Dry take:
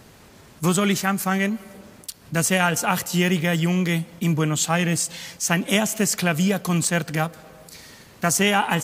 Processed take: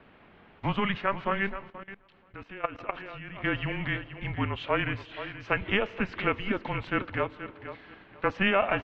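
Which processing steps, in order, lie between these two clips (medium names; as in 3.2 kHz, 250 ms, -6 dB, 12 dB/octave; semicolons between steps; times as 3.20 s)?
mistuned SSB -200 Hz 290–3200 Hz; feedback delay 479 ms, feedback 22%, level -12 dB; 1.70–3.44 s: level held to a coarse grid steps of 19 dB; trim -3.5 dB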